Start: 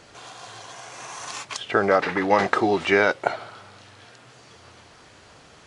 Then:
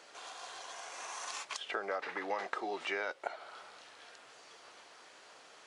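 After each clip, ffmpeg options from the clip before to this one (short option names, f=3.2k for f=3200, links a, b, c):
-af "highpass=460,acompressor=threshold=-33dB:ratio=2.5,volume=-5.5dB"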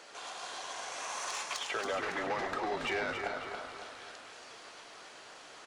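-filter_complex "[0:a]asplit=2[a][b];[b]asplit=4[c][d][e][f];[c]adelay=102,afreqshift=-150,volume=-10dB[g];[d]adelay=204,afreqshift=-300,volume=-18.6dB[h];[e]adelay=306,afreqshift=-450,volume=-27.3dB[i];[f]adelay=408,afreqshift=-600,volume=-35.9dB[j];[g][h][i][j]amix=inputs=4:normalize=0[k];[a][k]amix=inputs=2:normalize=0,asoftclip=type=tanh:threshold=-31dB,asplit=2[l][m];[m]aecho=0:1:278|556|834|1112|1390:0.473|0.218|0.1|0.0461|0.0212[n];[l][n]amix=inputs=2:normalize=0,volume=4dB"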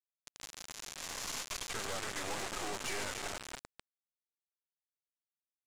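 -af "aresample=16000,acrusher=bits=3:dc=4:mix=0:aa=0.000001,aresample=44100,aeval=exprs='(tanh(70.8*val(0)+0.2)-tanh(0.2))/70.8':c=same,volume=7.5dB"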